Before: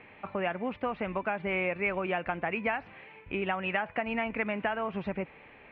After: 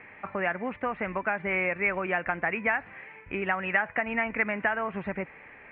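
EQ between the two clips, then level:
low-pass with resonance 1,900 Hz, resonance Q 2.6
0.0 dB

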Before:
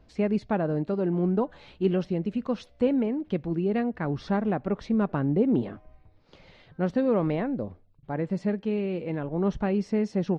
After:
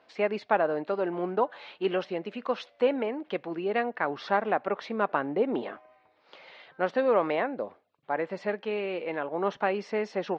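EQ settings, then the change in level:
band-pass filter 650–3,700 Hz
+7.5 dB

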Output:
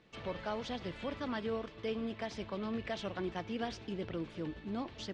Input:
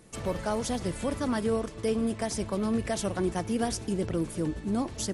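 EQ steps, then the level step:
low-pass with resonance 3,400 Hz, resonance Q 1.6
high-frequency loss of the air 100 metres
spectral tilt +1.5 dB per octave
−7.0 dB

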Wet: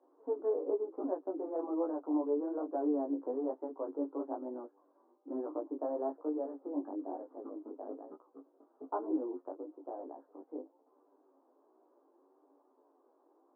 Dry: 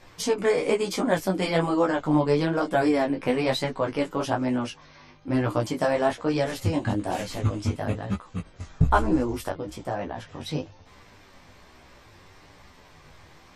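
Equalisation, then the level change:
Gaussian smoothing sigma 11 samples
Chebyshev high-pass with heavy ripple 270 Hz, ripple 3 dB
high-frequency loss of the air 230 metres
−5.5 dB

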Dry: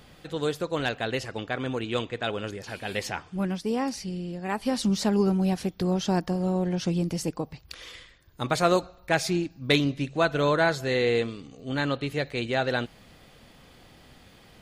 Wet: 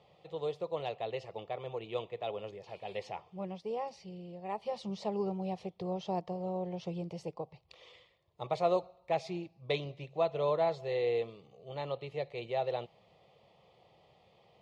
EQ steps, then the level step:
band-pass filter 160–2,500 Hz
phaser with its sweep stopped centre 640 Hz, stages 4
−4.5 dB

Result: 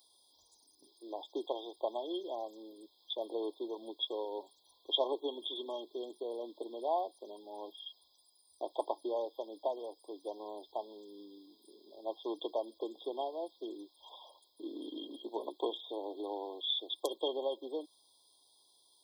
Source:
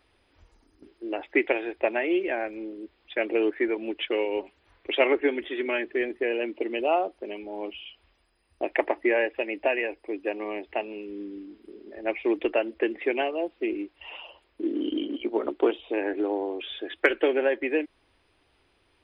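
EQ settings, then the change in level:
linear-phase brick-wall band-stop 1,100–3,200 Hz
first difference
+11.5 dB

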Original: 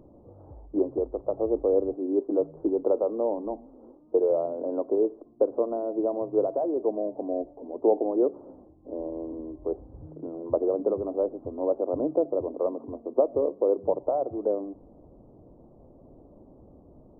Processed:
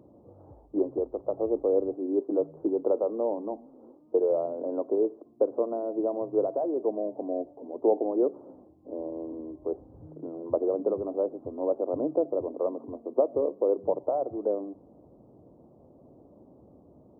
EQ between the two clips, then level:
high-pass filter 92 Hz 12 dB per octave
−1.5 dB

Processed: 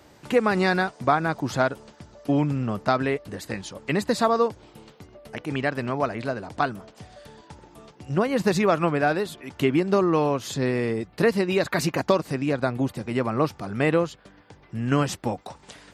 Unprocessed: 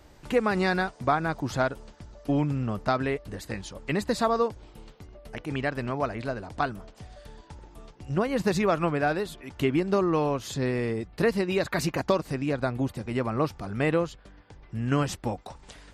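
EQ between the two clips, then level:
high-pass filter 110 Hz 12 dB per octave
+3.5 dB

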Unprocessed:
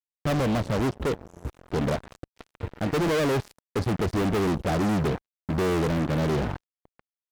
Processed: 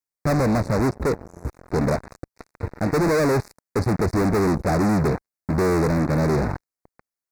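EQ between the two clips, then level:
Butterworth band-reject 3,100 Hz, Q 1.6
+4.5 dB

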